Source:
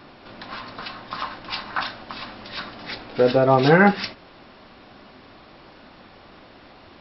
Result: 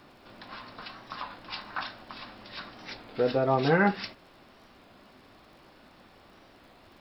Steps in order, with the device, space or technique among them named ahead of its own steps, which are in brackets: warped LP (warped record 33 1/3 rpm, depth 100 cents; crackle 42 per s -43 dBFS; pink noise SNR 38 dB); trim -8.5 dB

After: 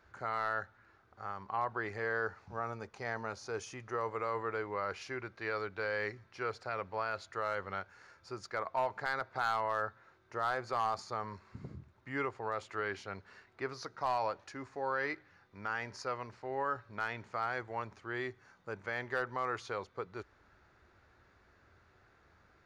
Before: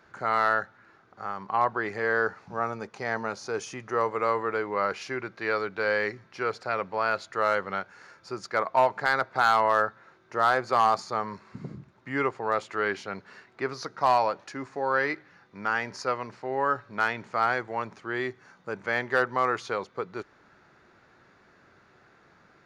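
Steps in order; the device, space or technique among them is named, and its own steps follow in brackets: car stereo with a boomy subwoofer (resonant low shelf 110 Hz +11 dB, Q 1.5; peak limiter -16.5 dBFS, peak gain reduction 4 dB); trim -7.5 dB

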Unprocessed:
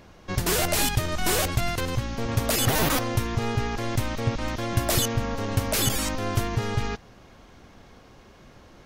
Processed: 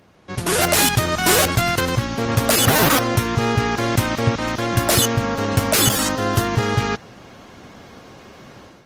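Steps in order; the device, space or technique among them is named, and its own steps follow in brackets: 5.90–6.47 s: band-stop 2.3 kHz, Q 6.3; dynamic bell 1.4 kHz, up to +3 dB, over -43 dBFS, Q 2.6; video call (high-pass 100 Hz 12 dB/octave; level rider gain up to 11 dB; trim -1 dB; Opus 24 kbps 48 kHz)

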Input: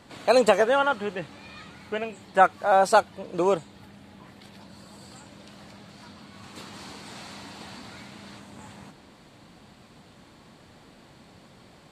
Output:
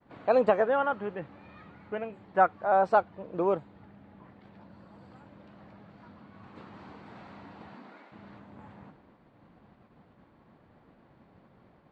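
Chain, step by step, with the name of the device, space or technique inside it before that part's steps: 7.68–8.11 s: high-pass 110 Hz -> 380 Hz 24 dB/octave; hearing-loss simulation (low-pass 1.6 kHz 12 dB/octave; expander -49 dBFS); trim -4 dB

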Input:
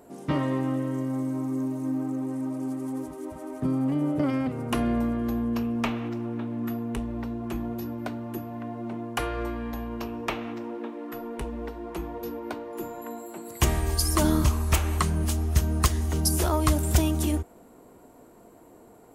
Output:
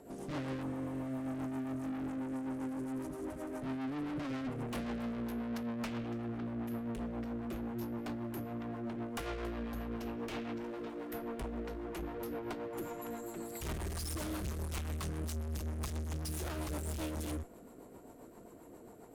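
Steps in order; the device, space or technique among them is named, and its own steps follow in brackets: overdriven rotary cabinet (valve stage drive 38 dB, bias 0.55; rotary cabinet horn 7.5 Hz); 0.66–1.20 s: spectral replace 1.3–10 kHz after; 10.64–11.13 s: tone controls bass -6 dB, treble +6 dB; trim +2.5 dB

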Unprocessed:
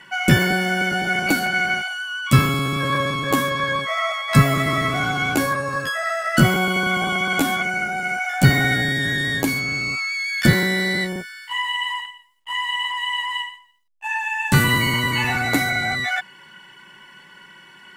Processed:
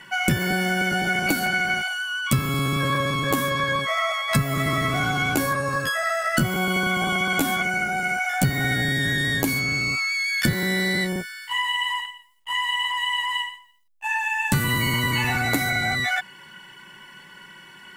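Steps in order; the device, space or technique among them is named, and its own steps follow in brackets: ASMR close-microphone chain (bass shelf 160 Hz +4.5 dB; compression 5:1, threshold -19 dBFS, peak gain reduction 12.5 dB; treble shelf 9 kHz +7.5 dB)

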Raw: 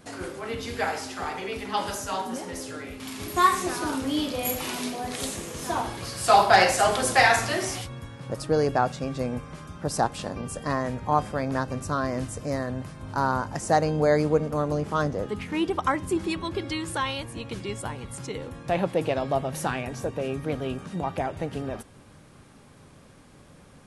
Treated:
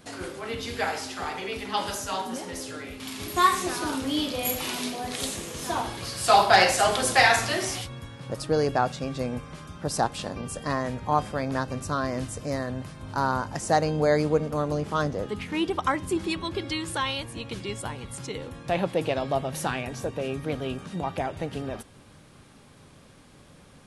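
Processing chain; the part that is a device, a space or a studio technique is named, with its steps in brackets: presence and air boost (peaking EQ 3.6 kHz +4 dB 1.2 oct; treble shelf 11 kHz +3 dB); trim -1 dB

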